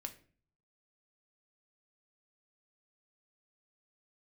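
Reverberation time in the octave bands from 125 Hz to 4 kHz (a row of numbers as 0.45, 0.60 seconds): 0.85, 0.60, 0.50, 0.40, 0.40, 0.30 seconds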